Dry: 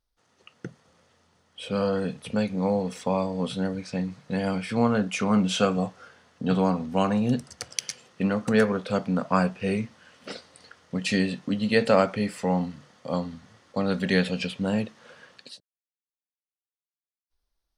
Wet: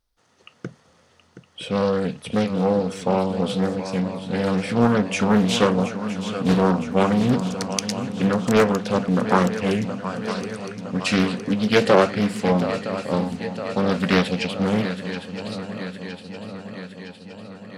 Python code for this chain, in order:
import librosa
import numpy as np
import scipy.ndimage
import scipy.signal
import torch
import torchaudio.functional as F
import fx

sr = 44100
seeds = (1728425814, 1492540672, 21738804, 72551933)

y = fx.echo_swing(x, sr, ms=963, ratio=3, feedback_pct=62, wet_db=-11.5)
y = fx.doppler_dist(y, sr, depth_ms=0.5)
y = F.gain(torch.from_numpy(y), 4.5).numpy()